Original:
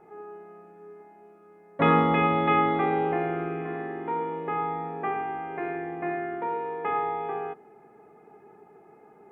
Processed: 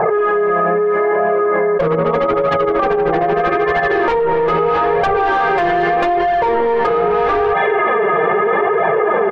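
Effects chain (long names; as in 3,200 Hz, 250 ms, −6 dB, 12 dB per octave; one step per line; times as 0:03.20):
brickwall limiter −18.5 dBFS, peak gain reduction 9.5 dB
comb filter 1.8 ms, depth 83%
delay with a high-pass on its return 308 ms, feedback 84%, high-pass 2,800 Hz, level −13 dB
0:01.85–0:03.93: amplitude tremolo 13 Hz, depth 87%
treble cut that deepens with the level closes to 560 Hz, closed at −24.5 dBFS
single-tap delay 252 ms −21 dB
mid-hump overdrive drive 32 dB, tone 1,600 Hz, clips at −6 dBFS
low-pass that shuts in the quiet parts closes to 1,100 Hz, open at −14 dBFS
flanger 0.79 Hz, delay 1.1 ms, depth 5.3 ms, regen +2%
envelope flattener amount 100%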